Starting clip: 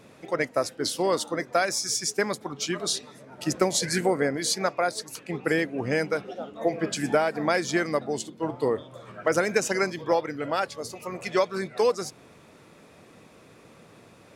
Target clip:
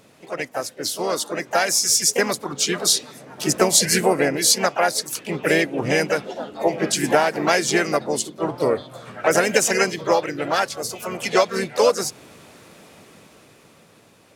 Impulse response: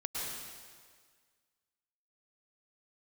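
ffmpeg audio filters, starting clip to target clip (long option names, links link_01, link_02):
-filter_complex "[0:a]dynaudnorm=framelen=230:gausssize=13:maxgain=10.5dB,highshelf=frequency=3100:gain=7,asplit=3[link_01][link_02][link_03];[link_02]asetrate=52444,aresample=44100,atempo=0.840896,volume=-6dB[link_04];[link_03]asetrate=58866,aresample=44100,atempo=0.749154,volume=-12dB[link_05];[link_01][link_04][link_05]amix=inputs=3:normalize=0,volume=-3.5dB"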